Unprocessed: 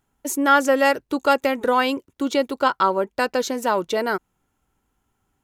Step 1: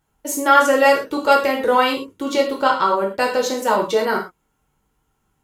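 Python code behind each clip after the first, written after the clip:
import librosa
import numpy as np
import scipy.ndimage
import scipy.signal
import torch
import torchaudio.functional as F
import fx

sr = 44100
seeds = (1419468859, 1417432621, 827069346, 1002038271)

y = fx.rev_gated(x, sr, seeds[0], gate_ms=150, shape='falling', drr_db=-2.0)
y = y * librosa.db_to_amplitude(-1.0)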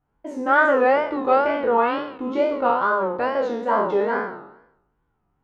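y = fx.spec_trails(x, sr, decay_s=0.83)
y = scipy.signal.sosfilt(scipy.signal.butter(2, 1600.0, 'lowpass', fs=sr, output='sos'), y)
y = fx.wow_flutter(y, sr, seeds[1], rate_hz=2.1, depth_cents=150.0)
y = y * librosa.db_to_amplitude(-4.5)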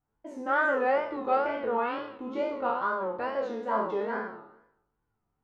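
y = fx.comb_fb(x, sr, f0_hz=110.0, decay_s=0.35, harmonics='all', damping=0.0, mix_pct=70)
y = y * librosa.db_to_amplitude(-1.5)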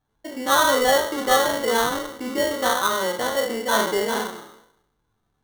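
y = fx.sample_hold(x, sr, seeds[2], rate_hz=2500.0, jitter_pct=0)
y = y * librosa.db_to_amplitude(7.5)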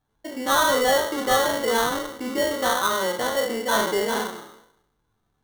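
y = 10.0 ** (-12.0 / 20.0) * np.tanh(x / 10.0 ** (-12.0 / 20.0))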